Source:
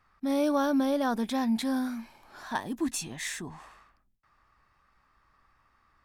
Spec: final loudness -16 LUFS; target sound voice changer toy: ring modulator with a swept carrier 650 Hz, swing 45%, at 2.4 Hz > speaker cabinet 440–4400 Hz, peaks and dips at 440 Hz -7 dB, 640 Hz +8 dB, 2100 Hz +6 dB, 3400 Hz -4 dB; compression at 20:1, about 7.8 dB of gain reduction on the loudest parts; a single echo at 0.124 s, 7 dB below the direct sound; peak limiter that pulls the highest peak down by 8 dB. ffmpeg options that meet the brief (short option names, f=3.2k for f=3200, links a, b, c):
-af "acompressor=threshold=-30dB:ratio=20,alimiter=level_in=5dB:limit=-24dB:level=0:latency=1,volume=-5dB,aecho=1:1:124:0.447,aeval=exprs='val(0)*sin(2*PI*650*n/s+650*0.45/2.4*sin(2*PI*2.4*n/s))':c=same,highpass=440,equalizer=f=440:t=q:w=4:g=-7,equalizer=f=640:t=q:w=4:g=8,equalizer=f=2.1k:t=q:w=4:g=6,equalizer=f=3.4k:t=q:w=4:g=-4,lowpass=f=4.4k:w=0.5412,lowpass=f=4.4k:w=1.3066,volume=23dB"